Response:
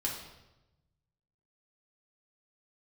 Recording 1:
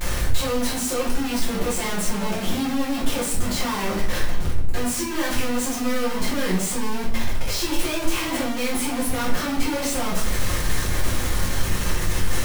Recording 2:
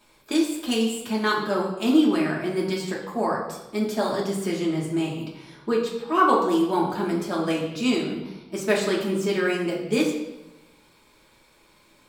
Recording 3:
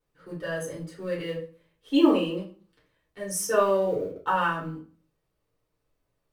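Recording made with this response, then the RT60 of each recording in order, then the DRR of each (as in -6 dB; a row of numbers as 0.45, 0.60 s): 2; 0.65, 1.0, 0.45 s; -8.0, -3.5, -6.5 dB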